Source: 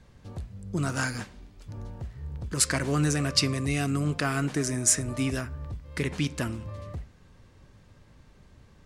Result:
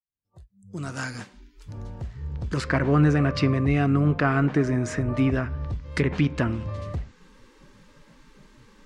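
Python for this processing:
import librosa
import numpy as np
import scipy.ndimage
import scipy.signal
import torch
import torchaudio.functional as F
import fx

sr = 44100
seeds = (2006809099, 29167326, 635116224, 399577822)

y = fx.fade_in_head(x, sr, length_s=2.94)
y = fx.env_lowpass_down(y, sr, base_hz=1800.0, full_db=-25.0)
y = fx.noise_reduce_blind(y, sr, reduce_db=27)
y = y * librosa.db_to_amplitude(6.5)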